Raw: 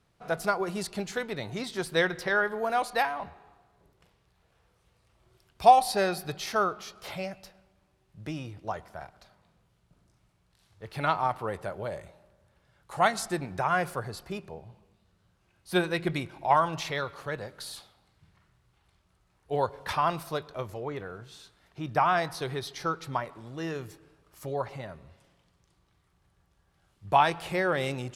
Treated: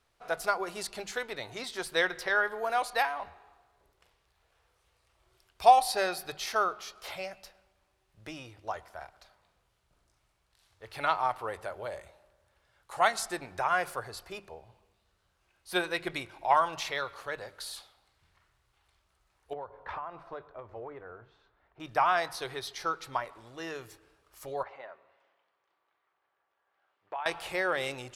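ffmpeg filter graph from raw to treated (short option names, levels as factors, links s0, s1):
-filter_complex "[0:a]asettb=1/sr,asplit=3[s0][s1][s2];[s0]atrim=end=19.534[s3];[s1]atrim=start=19.53:end=21.8,asetpts=PTS-STARTPTS,afade=t=in:d=0.004:c=qsin,afade=t=out:st=2.266:d=0.004:c=qsin,lowpass=1400,acompressor=threshold=0.0282:ratio=12:attack=3.2:release=140:knee=1:detection=peak,tremolo=f=2.4:d=0.29[s4];[s2]atrim=start=21.796[s5];[s3][s4]acrossfade=d=0.004:c1=hsin:c2=qsin[s6];[s6][s5]acrossfade=d=0.004:c1=qsin:c2=hsin,asettb=1/sr,asplit=3[s7][s8][s9];[s7]atrim=end=24.634[s10];[s8]atrim=start=24.63:end=27.26,asetpts=PTS-STARTPTS,afade=t=in:d=0.004:c=qsin,afade=t=out:st=2.626:d=0.004:c=qsin,acompressor=threshold=0.0316:ratio=8:attack=3.2:release=140:knee=1:detection=peak,highpass=440,lowpass=2100[s11];[s9]atrim=start=27.256[s12];[s10][s11]acrossfade=d=0.004:c1=hsin:c2=qsin[s13];[s13][s12]acrossfade=d=0.004:c1=qsin:c2=hsin,equalizer=f=170:w=0.73:g=-14.5,bandreject=f=50:t=h:w=6,bandreject=f=100:t=h:w=6,bandreject=f=150:t=h:w=6,bandreject=f=200:t=h:w=6"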